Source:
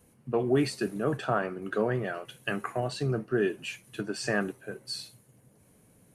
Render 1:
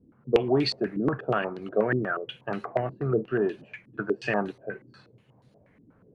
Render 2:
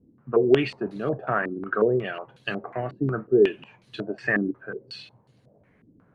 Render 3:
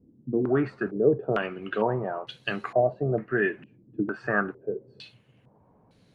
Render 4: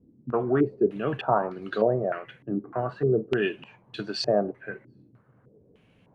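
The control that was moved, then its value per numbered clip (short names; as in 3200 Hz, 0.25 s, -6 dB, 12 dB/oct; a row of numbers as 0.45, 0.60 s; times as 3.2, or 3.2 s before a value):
stepped low-pass, rate: 8.3, 5.5, 2.2, 3.3 Hz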